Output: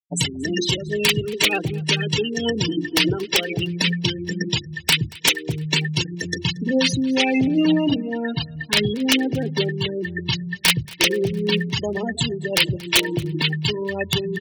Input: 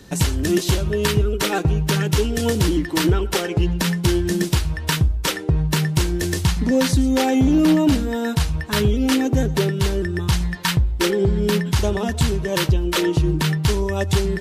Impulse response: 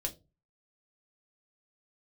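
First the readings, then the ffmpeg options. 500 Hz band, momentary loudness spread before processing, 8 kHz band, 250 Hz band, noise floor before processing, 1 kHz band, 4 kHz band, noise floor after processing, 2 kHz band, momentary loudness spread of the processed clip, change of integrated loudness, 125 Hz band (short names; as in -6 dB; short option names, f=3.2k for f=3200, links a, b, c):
-2.5 dB, 4 LU, 0.0 dB, -3.0 dB, -28 dBFS, -4.5 dB, +6.0 dB, -37 dBFS, +4.0 dB, 7 LU, -1.0 dB, -6.0 dB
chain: -af "highpass=f=120:w=0.5412,highpass=f=120:w=1.3066,bandreject=f=50:t=h:w=6,bandreject=f=100:t=h:w=6,bandreject=f=150:t=h:w=6,bandreject=f=200:t=h:w=6,bandreject=f=250:t=h:w=6,bandreject=f=300:t=h:w=6,bandreject=f=350:t=h:w=6,afftfilt=real='re*gte(hypot(re,im),0.0891)':imag='im*gte(hypot(re,im),0.0891)':win_size=1024:overlap=0.75,highshelf=f=1.8k:t=q:w=3:g=8,aeval=exprs='(mod(1.58*val(0)+1,2)-1)/1.58':c=same,aecho=1:1:230|460|690|920:0.0708|0.0375|0.0199|0.0105,volume=-1.5dB"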